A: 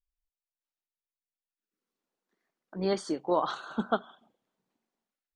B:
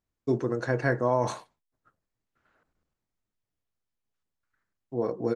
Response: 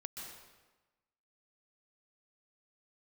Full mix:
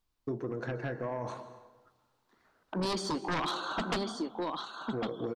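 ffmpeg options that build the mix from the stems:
-filter_complex "[0:a]acrossover=split=380|2600[s0][s1][s2];[s0]acompressor=threshold=0.0224:ratio=4[s3];[s1]acompressor=threshold=0.00447:ratio=4[s4];[s2]acompressor=threshold=0.00447:ratio=4[s5];[s3][s4][s5]amix=inputs=3:normalize=0,equalizer=f=125:t=o:w=1:g=-6,equalizer=f=250:t=o:w=1:g=6,equalizer=f=1000:t=o:w=1:g=12,equalizer=f=4000:t=o:w=1:g=7,volume=0.596,asplit=3[s6][s7][s8];[s7]volume=0.355[s9];[s8]volume=0.531[s10];[1:a]lowpass=f=2000:p=1,acompressor=threshold=0.0355:ratio=10,volume=0.251,asplit=2[s11][s12];[s12]volume=0.668[s13];[2:a]atrim=start_sample=2205[s14];[s9][s13]amix=inputs=2:normalize=0[s15];[s15][s14]afir=irnorm=-1:irlink=0[s16];[s10]aecho=0:1:1103:1[s17];[s6][s11][s16][s17]amix=inputs=4:normalize=0,aeval=exprs='0.106*(cos(1*acos(clip(val(0)/0.106,-1,1)))-cos(1*PI/2))+0.0422*(cos(3*acos(clip(val(0)/0.106,-1,1)))-cos(3*PI/2))+0.0376*(cos(7*acos(clip(val(0)/0.106,-1,1)))-cos(7*PI/2))':c=same"

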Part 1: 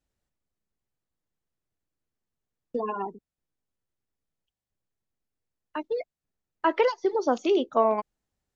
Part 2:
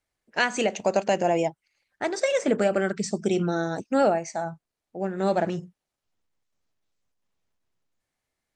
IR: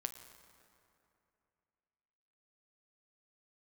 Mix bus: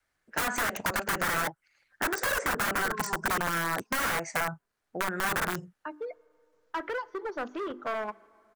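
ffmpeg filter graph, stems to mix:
-filter_complex "[0:a]lowpass=f=1400:p=1,bandreject=f=50:t=h:w=6,bandreject=f=100:t=h:w=6,bandreject=f=150:t=h:w=6,bandreject=f=200:t=h:w=6,bandreject=f=250:t=h:w=6,bandreject=f=300:t=h:w=6,bandreject=f=350:t=h:w=6,asoftclip=type=hard:threshold=0.0668,adelay=100,volume=0.376,asplit=2[s0][s1];[s1]volume=0.282[s2];[1:a]adynamicequalizer=threshold=0.0112:dfrequency=210:dqfactor=1.9:tfrequency=210:tqfactor=1.9:attack=5:release=100:ratio=0.375:range=2.5:mode=cutabove:tftype=bell,aeval=exprs='(mod(14.1*val(0)+1,2)-1)/14.1':c=same,volume=1.19[s3];[2:a]atrim=start_sample=2205[s4];[s2][s4]afir=irnorm=-1:irlink=0[s5];[s0][s3][s5]amix=inputs=3:normalize=0,equalizer=f=1500:t=o:w=0.83:g=10,acrossover=split=660|2000|7500[s6][s7][s8][s9];[s6]acompressor=threshold=0.02:ratio=4[s10];[s7]acompressor=threshold=0.0398:ratio=4[s11];[s8]acompressor=threshold=0.00794:ratio=4[s12];[s9]acompressor=threshold=0.02:ratio=4[s13];[s10][s11][s12][s13]amix=inputs=4:normalize=0"

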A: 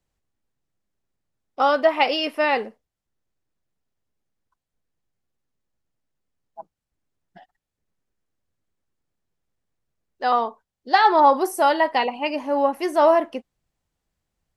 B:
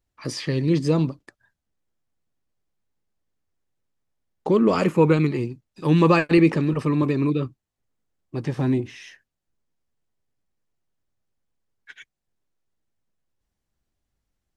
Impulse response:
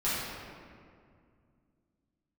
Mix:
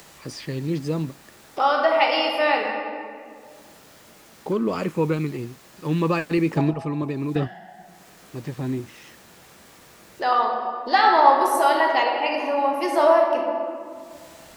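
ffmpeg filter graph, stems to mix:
-filter_complex "[0:a]highpass=f=490:p=1,acompressor=mode=upward:threshold=0.0891:ratio=2.5,volume=0.631,asplit=3[s0][s1][s2];[s1]volume=0.473[s3];[1:a]volume=1.19[s4];[s2]apad=whole_len=642149[s5];[s4][s5]sidechaingate=range=0.447:threshold=0.00631:ratio=16:detection=peak[s6];[2:a]atrim=start_sample=2205[s7];[s3][s7]afir=irnorm=-1:irlink=0[s8];[s0][s6][s8]amix=inputs=3:normalize=0"

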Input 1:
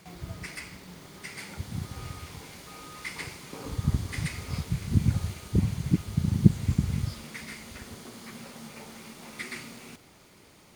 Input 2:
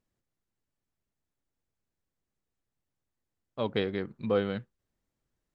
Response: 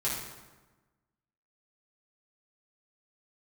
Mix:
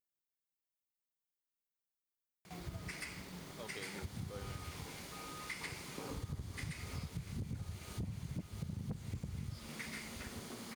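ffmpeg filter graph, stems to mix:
-filter_complex "[0:a]asoftclip=type=tanh:threshold=0.133,adelay=2450,volume=0.708[s0];[1:a]aemphasis=mode=production:type=bsi,volume=0.141[s1];[s0][s1]amix=inputs=2:normalize=0,acompressor=threshold=0.01:ratio=6"

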